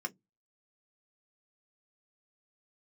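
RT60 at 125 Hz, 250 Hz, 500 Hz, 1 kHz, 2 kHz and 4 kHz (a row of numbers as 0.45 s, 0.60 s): 0.30 s, 0.25 s, 0.15 s, 0.10 s, 0.10 s, 0.10 s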